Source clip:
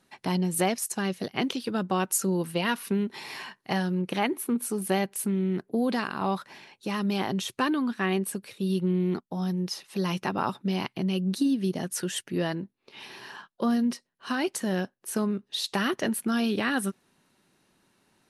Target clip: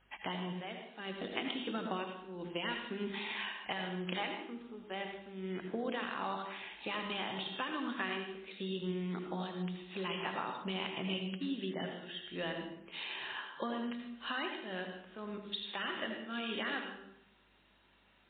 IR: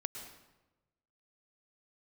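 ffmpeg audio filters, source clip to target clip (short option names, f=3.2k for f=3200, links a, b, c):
-filter_complex "[0:a]aemphasis=mode=production:type=riaa,bandreject=f=50:t=h:w=6,bandreject=f=100:t=h:w=6,bandreject=f=150:t=h:w=6,bandreject=f=200:t=h:w=6,bandreject=f=250:t=h:w=6,bandreject=f=300:t=h:w=6,bandreject=f=350:t=h:w=6,bandreject=f=400:t=h:w=6,bandreject=f=450:t=h:w=6,asplit=3[a][b][c];[a]afade=t=out:st=0.74:d=0.02[d];[b]adynamicequalizer=threshold=0.00501:dfrequency=260:dqfactor=1.3:tfrequency=260:tqfactor=1.3:attack=5:release=100:ratio=0.375:range=3:mode=boostabove:tftype=bell,afade=t=in:st=0.74:d=0.02,afade=t=out:st=3.11:d=0.02[e];[c]afade=t=in:st=3.11:d=0.02[f];[d][e][f]amix=inputs=3:normalize=0,acompressor=threshold=-32dB:ratio=12,aeval=exprs='val(0)+0.000316*(sin(2*PI*50*n/s)+sin(2*PI*2*50*n/s)/2+sin(2*PI*3*50*n/s)/3+sin(2*PI*4*50*n/s)/4+sin(2*PI*5*50*n/s)/5)':c=same[g];[1:a]atrim=start_sample=2205,asetrate=61740,aresample=44100[h];[g][h]afir=irnorm=-1:irlink=0,volume=3.5dB" -ar 8000 -c:a libmp3lame -b:a 16k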